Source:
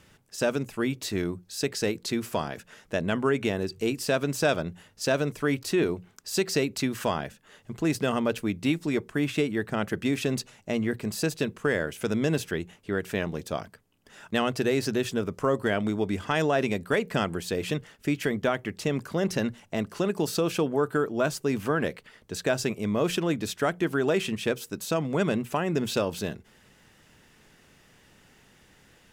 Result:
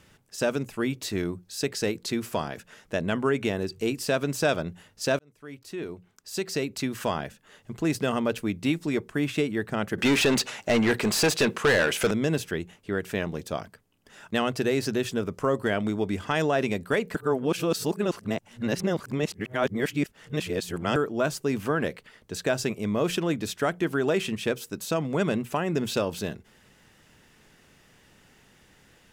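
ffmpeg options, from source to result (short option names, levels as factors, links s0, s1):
-filter_complex "[0:a]asettb=1/sr,asplit=3[s0][s1][s2];[s0]atrim=end=9.984[s3];[s1]atrim=start=9.98:end=12.11,asetpts=PTS-STARTPTS,afade=t=in:d=0.004:c=qsin,afade=t=out:st=2.126:d=0.004:c=qsin,asplit=2[s4][s5];[s5]highpass=f=720:p=1,volume=15.8,asoftclip=type=tanh:threshold=0.224[s6];[s4][s6]amix=inputs=2:normalize=0,lowpass=f=4800:p=1,volume=0.501[s7];[s2]atrim=start=12.106[s8];[s3][s7]acrossfade=d=0.004:c1=hsin:c2=qsin[s9];[s9][s8]acrossfade=d=0.004:c1=qsin:c2=hsin,asplit=4[s10][s11][s12][s13];[s10]atrim=end=5.19,asetpts=PTS-STARTPTS,afade=t=out:st=5.186:d=0.004:c=hsin[s14];[s11]atrim=start=5.19:end=17.152,asetpts=PTS-STARTPTS,afade=t=in:d=2.02[s15];[s12]atrim=start=17.148:end=20.962,asetpts=PTS-STARTPTS,areverse[s16];[s13]atrim=start=20.958[s17];[s14][s15]concat=n=2:v=0:a=1[s18];[s18][s16]acrossfade=d=0.004:c1=hsin:c2=hsin[s19];[s19][s17]acrossfade=d=0.004:c1=hsin:c2=hsin"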